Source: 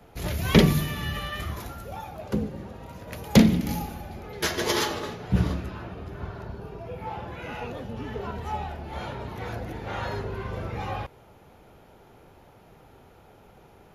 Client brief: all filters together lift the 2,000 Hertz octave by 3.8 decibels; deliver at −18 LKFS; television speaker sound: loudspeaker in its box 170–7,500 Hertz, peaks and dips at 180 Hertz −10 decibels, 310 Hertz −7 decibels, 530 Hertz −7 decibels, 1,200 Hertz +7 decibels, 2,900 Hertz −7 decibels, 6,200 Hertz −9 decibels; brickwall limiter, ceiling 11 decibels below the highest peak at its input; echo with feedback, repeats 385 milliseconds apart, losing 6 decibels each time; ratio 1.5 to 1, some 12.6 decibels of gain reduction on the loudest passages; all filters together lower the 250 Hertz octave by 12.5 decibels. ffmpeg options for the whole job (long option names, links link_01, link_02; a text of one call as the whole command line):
ffmpeg -i in.wav -af "equalizer=frequency=250:width_type=o:gain=-8.5,equalizer=frequency=2000:width_type=o:gain=5,acompressor=threshold=-50dB:ratio=1.5,alimiter=level_in=3.5dB:limit=-24dB:level=0:latency=1,volume=-3.5dB,highpass=frequency=170:width=0.5412,highpass=frequency=170:width=1.3066,equalizer=frequency=180:width_type=q:width=4:gain=-10,equalizer=frequency=310:width_type=q:width=4:gain=-7,equalizer=frequency=530:width_type=q:width=4:gain=-7,equalizer=frequency=1200:width_type=q:width=4:gain=7,equalizer=frequency=2900:width_type=q:width=4:gain=-7,equalizer=frequency=6200:width_type=q:width=4:gain=-9,lowpass=frequency=7500:width=0.5412,lowpass=frequency=7500:width=1.3066,aecho=1:1:385|770|1155|1540|1925|2310:0.501|0.251|0.125|0.0626|0.0313|0.0157,volume=23.5dB" out.wav